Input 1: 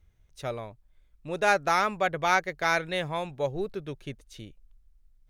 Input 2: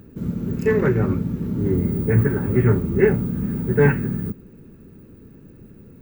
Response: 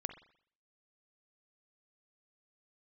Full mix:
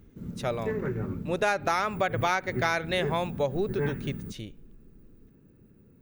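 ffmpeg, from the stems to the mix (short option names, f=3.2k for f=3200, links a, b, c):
-filter_complex "[0:a]volume=2.5dB,asplit=3[a][b][c];[b]volume=-13.5dB[d];[1:a]volume=-12.5dB[e];[c]apad=whole_len=265129[f];[e][f]sidechaincompress=threshold=-28dB:ratio=8:attack=16:release=165[g];[2:a]atrim=start_sample=2205[h];[d][h]afir=irnorm=-1:irlink=0[i];[a][g][i]amix=inputs=3:normalize=0,acompressor=threshold=-22dB:ratio=6"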